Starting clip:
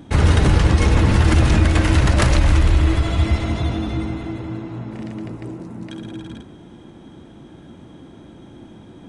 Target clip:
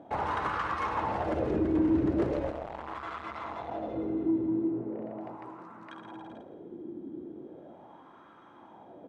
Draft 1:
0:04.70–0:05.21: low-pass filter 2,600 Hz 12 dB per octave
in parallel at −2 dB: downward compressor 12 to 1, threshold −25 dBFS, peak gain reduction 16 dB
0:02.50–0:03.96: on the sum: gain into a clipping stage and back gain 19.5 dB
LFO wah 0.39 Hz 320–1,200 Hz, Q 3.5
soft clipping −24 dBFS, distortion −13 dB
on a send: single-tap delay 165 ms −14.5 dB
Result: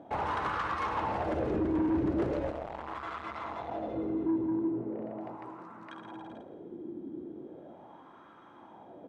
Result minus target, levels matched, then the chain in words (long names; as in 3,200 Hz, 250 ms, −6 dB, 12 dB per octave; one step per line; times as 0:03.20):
soft clipping: distortion +9 dB
0:04.70–0:05.21: low-pass filter 2,600 Hz 12 dB per octave
in parallel at −2 dB: downward compressor 12 to 1, threshold −25 dBFS, peak gain reduction 16 dB
0:02.50–0:03.96: on the sum: gain into a clipping stage and back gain 19.5 dB
LFO wah 0.39 Hz 320–1,200 Hz, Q 3.5
soft clipping −17 dBFS, distortion −22 dB
on a send: single-tap delay 165 ms −14.5 dB